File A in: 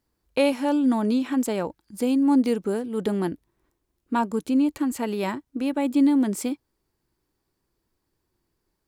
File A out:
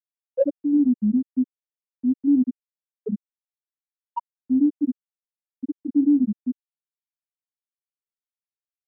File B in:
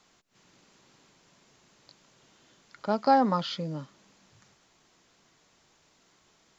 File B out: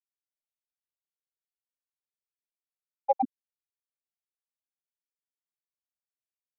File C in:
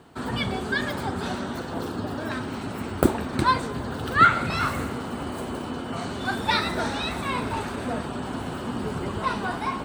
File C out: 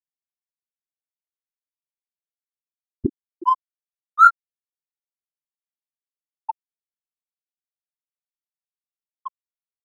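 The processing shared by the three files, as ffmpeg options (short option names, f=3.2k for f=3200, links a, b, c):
-filter_complex "[0:a]asplit=2[a][b];[b]adelay=24,volume=-5dB[c];[a][c]amix=inputs=2:normalize=0,aeval=exprs='val(0)+0.00501*(sin(2*PI*60*n/s)+sin(2*PI*2*60*n/s)/2+sin(2*PI*3*60*n/s)/3+sin(2*PI*4*60*n/s)/4+sin(2*PI*5*60*n/s)/5)':c=same,afftfilt=real='re*gte(hypot(re,im),1)':imag='im*gte(hypot(re,im),1)':win_size=1024:overlap=0.75,acrossover=split=380|650|2800[d][e][f][g];[d]alimiter=limit=-20dB:level=0:latency=1:release=92[h];[h][e][f][g]amix=inputs=4:normalize=0,adynamicsmooth=sensitivity=6.5:basefreq=4.9k,volume=4dB"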